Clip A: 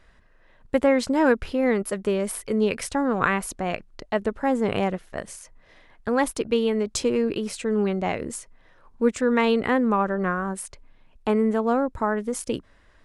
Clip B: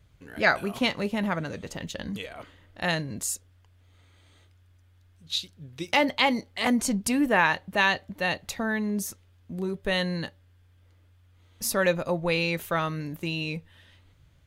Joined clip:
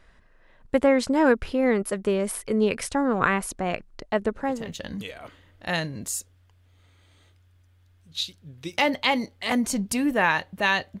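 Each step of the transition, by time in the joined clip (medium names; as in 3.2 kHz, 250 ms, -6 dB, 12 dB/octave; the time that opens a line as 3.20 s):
clip A
4.53 s: go over to clip B from 1.68 s, crossfade 0.40 s linear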